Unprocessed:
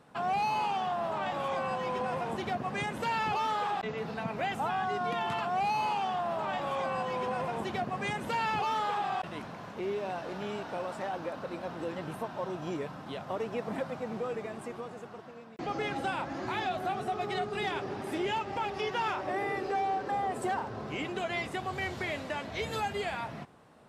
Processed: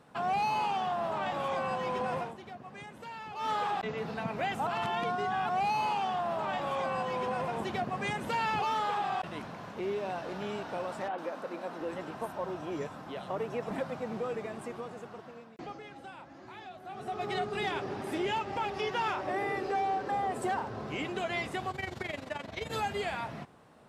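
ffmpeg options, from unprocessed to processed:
-filter_complex "[0:a]asettb=1/sr,asplit=3[a][b][c];[a]atrim=end=11.084[d];[b]atrim=start=11.08:end=13.71,asetpts=PTS-STARTPTS,afade=t=in:d=0.004:c=qsin,afade=t=out:st=2.626:d=0.004:c=qsin,acrossover=split=180|3600[e][f][g];[g]adelay=100[h];[e]adelay=730[i];[i][f][h]amix=inputs=3:normalize=0,atrim=end_sample=115983[j];[c]atrim=start=13.706[k];[d][j]acrossfade=d=0.004:c1=hsin:c2=qsin[l];[l][k]acrossfade=d=0.004:c1=qsin:c2=hsin,asettb=1/sr,asplit=3[m][n][o];[m]atrim=end=21.714[p];[n]atrim=start=21.71:end=22.71,asetpts=PTS-STARTPTS,afade=t=in:d=0.004:c=qsin,afade=t=out:st=0.996:d=0.004:c=qsin,tremolo=f=23:d=0.788[q];[o]atrim=start=22.706[r];[p][q]acrossfade=d=0.004:c1=hsin:c2=qsin[s];[s][r]acrossfade=d=0.004:c1=qsin:c2=hsin,asplit=7[t][u][v][w][x][y][z];[t]atrim=end=2.34,asetpts=PTS-STARTPTS,afade=t=out:st=2.19:d=0.15:silence=0.237137[aa];[u]atrim=start=2.34:end=3.35,asetpts=PTS-STARTPTS,volume=-12.5dB[ab];[v]atrim=start=3.35:end=4.672,asetpts=PTS-STARTPTS,afade=t=in:d=0.15:silence=0.237137[ac];[w]atrim=start=4.668:end=5.492,asetpts=PTS-STARTPTS,areverse[ad];[x]atrim=start=5.488:end=15.81,asetpts=PTS-STARTPTS,afade=t=out:st=9.862:d=0.46:silence=0.199526[ae];[y]atrim=start=15.81:end=16.85,asetpts=PTS-STARTPTS,volume=-14dB[af];[z]atrim=start=16.85,asetpts=PTS-STARTPTS,afade=t=in:d=0.46:silence=0.199526[ag];[aa][ab][ac]concat=n=3:v=0:a=1[ah];[ah][ad]acrossfade=d=0.004:c1=hsin:c2=hsin[ai];[ae][af][ag]concat=n=3:v=0:a=1[aj];[ai][aj]acrossfade=d=0.004:c1=hsin:c2=hsin"

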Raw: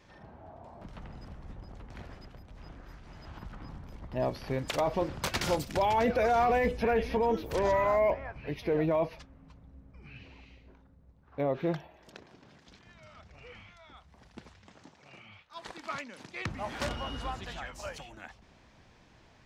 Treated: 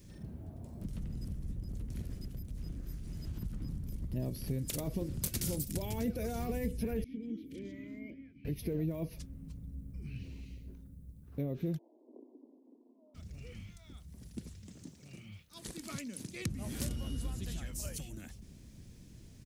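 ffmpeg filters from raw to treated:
-filter_complex "[0:a]asettb=1/sr,asplit=3[a][b][c];[a]atrim=end=7.044[d];[b]atrim=start=7.04:end=8.45,asetpts=PTS-STARTPTS,afade=t=in:d=0.004:c=qsin,afade=t=out:st=1.406:d=0.004:c=qsin,asplit=3[e][f][g];[e]bandpass=f=270:t=q:w=8,volume=0dB[h];[f]bandpass=f=2.29k:t=q:w=8,volume=-6dB[i];[g]bandpass=f=3.01k:t=q:w=8,volume=-9dB[j];[h][i][j]amix=inputs=3:normalize=0[k];[c]atrim=start=8.446[l];[d][k]acrossfade=d=0.004:c1=hsin:c2=qsin[m];[m][l]acrossfade=d=0.004:c1=qsin:c2=hsin,asplit=3[n][o][p];[n]afade=t=out:st=11.77:d=0.02[q];[o]asuperpass=centerf=500:order=20:qfactor=0.64,afade=t=in:st=11.77:d=0.02,afade=t=out:st=13.14:d=0.02[r];[p]afade=t=in:st=13.14:d=0.02[s];[q][r][s]amix=inputs=3:normalize=0,firequalizer=gain_entry='entry(180,0);entry(810,-25);entry(2200,-16);entry(10000,10)':delay=0.05:min_phase=1,acompressor=threshold=-45dB:ratio=2.5,volume=9dB"

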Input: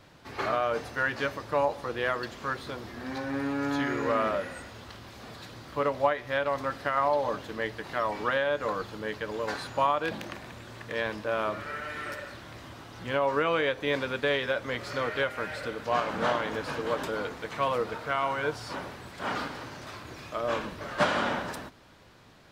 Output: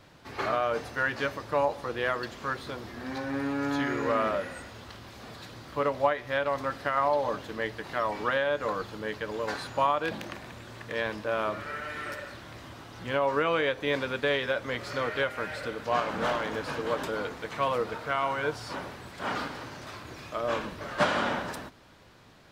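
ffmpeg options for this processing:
-filter_complex "[0:a]asettb=1/sr,asplit=3[a][b][c];[a]atrim=end=16.154[d];[b]atrim=start=16.15:end=16.72,asetpts=PTS-STARTPTS,afade=t=in:d=0.004:c=qsin,afade=t=out:st=0.566:d=0.004:c=qsin,asoftclip=type=hard:threshold=-23dB[e];[c]atrim=start=16.716[f];[d][e]acrossfade=d=0.004:c1=hsin:c2=qsin[g];[g][f]acrossfade=d=0.004:c1=qsin:c2=hsin"

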